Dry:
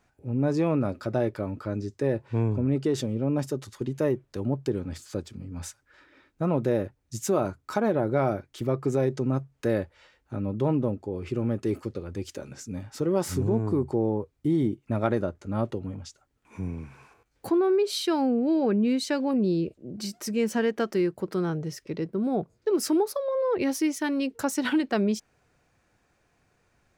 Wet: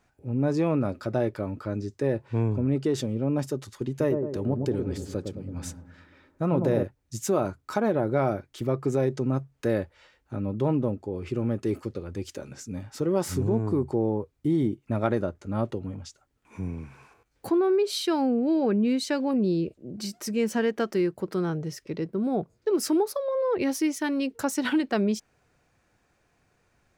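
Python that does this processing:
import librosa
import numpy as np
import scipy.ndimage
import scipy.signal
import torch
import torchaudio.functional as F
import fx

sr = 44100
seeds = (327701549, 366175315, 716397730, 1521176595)

y = fx.echo_wet_lowpass(x, sr, ms=109, feedback_pct=52, hz=790.0, wet_db=-4.0, at=(3.89, 6.83))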